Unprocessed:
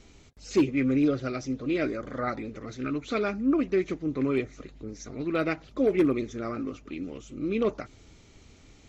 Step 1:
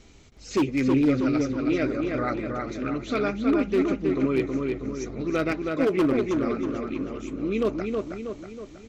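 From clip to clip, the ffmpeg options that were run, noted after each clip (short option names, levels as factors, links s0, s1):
-filter_complex "[0:a]aeval=exprs='0.133*(abs(mod(val(0)/0.133+3,4)-2)-1)':c=same,asplit=2[s0][s1];[s1]adelay=320,lowpass=f=3500:p=1,volume=0.668,asplit=2[s2][s3];[s3]adelay=320,lowpass=f=3500:p=1,volume=0.53,asplit=2[s4][s5];[s5]adelay=320,lowpass=f=3500:p=1,volume=0.53,asplit=2[s6][s7];[s7]adelay=320,lowpass=f=3500:p=1,volume=0.53,asplit=2[s8][s9];[s9]adelay=320,lowpass=f=3500:p=1,volume=0.53,asplit=2[s10][s11];[s11]adelay=320,lowpass=f=3500:p=1,volume=0.53,asplit=2[s12][s13];[s13]adelay=320,lowpass=f=3500:p=1,volume=0.53[s14];[s2][s4][s6][s8][s10][s12][s14]amix=inputs=7:normalize=0[s15];[s0][s15]amix=inputs=2:normalize=0,volume=1.19"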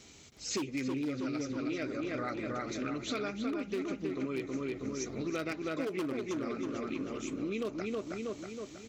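-af "highpass=93,highshelf=f=3100:g=10.5,acompressor=threshold=0.0355:ratio=6,volume=0.668"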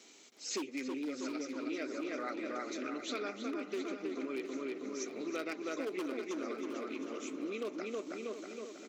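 -af "highpass=f=260:w=0.5412,highpass=f=260:w=1.3066,aecho=1:1:714|1428|2142|2856:0.282|0.121|0.0521|0.0224,volume=0.75"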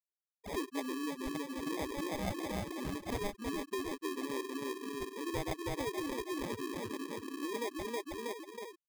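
-af "equalizer=f=2000:t=o:w=2.6:g=6.5,afftfilt=real='re*gte(hypot(re,im),0.0355)':imag='im*gte(hypot(re,im),0.0355)':win_size=1024:overlap=0.75,acrusher=samples=31:mix=1:aa=0.000001"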